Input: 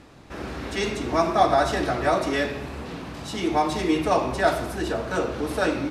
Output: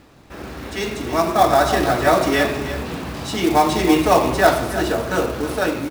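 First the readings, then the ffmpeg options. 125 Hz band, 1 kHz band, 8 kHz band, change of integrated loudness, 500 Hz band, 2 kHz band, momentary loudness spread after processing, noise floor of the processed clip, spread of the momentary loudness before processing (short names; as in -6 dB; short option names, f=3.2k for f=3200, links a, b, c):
+5.5 dB, +5.5 dB, +8.5 dB, +5.5 dB, +5.5 dB, +6.0 dB, 13 LU, -47 dBFS, 15 LU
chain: -af "aecho=1:1:319:0.266,acrusher=bits=4:mode=log:mix=0:aa=0.000001,dynaudnorm=f=570:g=5:m=11.5dB"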